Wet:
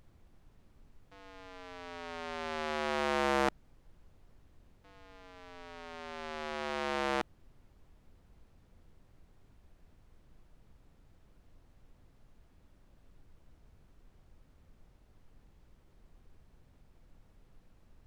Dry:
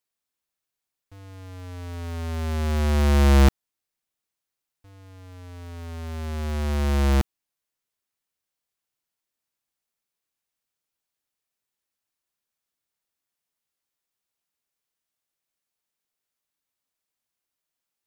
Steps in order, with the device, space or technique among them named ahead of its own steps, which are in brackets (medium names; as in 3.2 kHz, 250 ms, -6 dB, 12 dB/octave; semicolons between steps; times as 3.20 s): aircraft cabin announcement (band-pass 500–4100 Hz; saturation -14.5 dBFS, distortion -15 dB; brown noise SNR 16 dB)